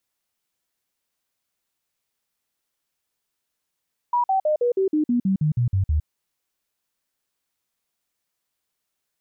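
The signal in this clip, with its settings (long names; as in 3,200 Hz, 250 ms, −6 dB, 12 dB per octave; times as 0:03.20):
stepped sweep 968 Hz down, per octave 3, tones 12, 0.11 s, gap 0.05 s −17 dBFS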